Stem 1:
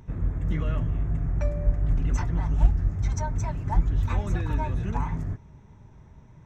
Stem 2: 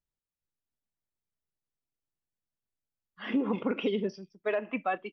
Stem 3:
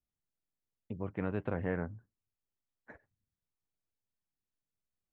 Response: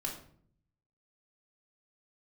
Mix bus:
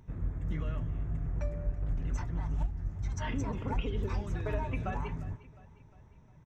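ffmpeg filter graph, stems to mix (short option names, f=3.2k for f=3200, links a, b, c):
-filter_complex "[0:a]alimiter=limit=-15.5dB:level=0:latency=1:release=414,volume=-7.5dB,asplit=2[a][b];[b]volume=-22dB[c];[1:a]acompressor=threshold=-33dB:ratio=6,volume=-5dB,asplit=3[d][e][f];[e]volume=-8dB[g];[f]volume=-15dB[h];[2:a]acompressor=threshold=-37dB:ratio=6,adelay=350,volume=-14dB[i];[3:a]atrim=start_sample=2205[j];[g][j]afir=irnorm=-1:irlink=0[k];[c][h]amix=inputs=2:normalize=0,aecho=0:1:355|710|1065|1420|1775|2130|2485:1|0.49|0.24|0.118|0.0576|0.0282|0.0138[l];[a][d][i][k][l]amix=inputs=5:normalize=0"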